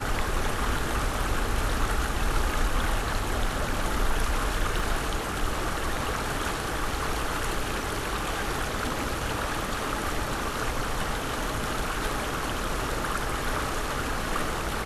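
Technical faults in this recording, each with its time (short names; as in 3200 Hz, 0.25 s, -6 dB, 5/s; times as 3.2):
4.79 gap 3.7 ms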